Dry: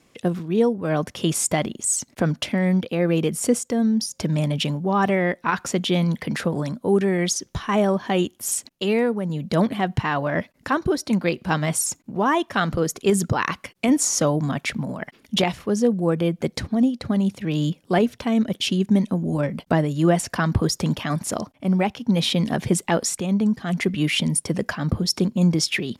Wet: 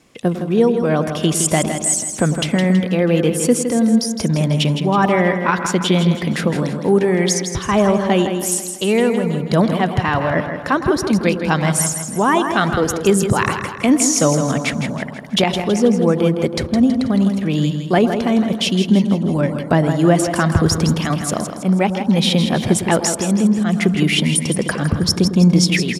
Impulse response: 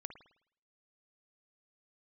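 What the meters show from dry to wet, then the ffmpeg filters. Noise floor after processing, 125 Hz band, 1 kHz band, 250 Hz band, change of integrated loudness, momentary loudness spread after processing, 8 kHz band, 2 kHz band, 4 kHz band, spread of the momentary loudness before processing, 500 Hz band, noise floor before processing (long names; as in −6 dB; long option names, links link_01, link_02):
−28 dBFS, +6.0 dB, +5.5 dB, +6.0 dB, +6.0 dB, 5 LU, +5.5 dB, +5.5 dB, +5.5 dB, 6 LU, +6.0 dB, −60 dBFS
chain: -filter_complex "[0:a]aecho=1:1:162|324|486|648|810:0.398|0.183|0.0842|0.0388|0.0178,asplit=2[link_01][link_02];[1:a]atrim=start_sample=2205,asetrate=22932,aresample=44100[link_03];[link_02][link_03]afir=irnorm=-1:irlink=0,volume=0.5dB[link_04];[link_01][link_04]amix=inputs=2:normalize=0,volume=-1dB"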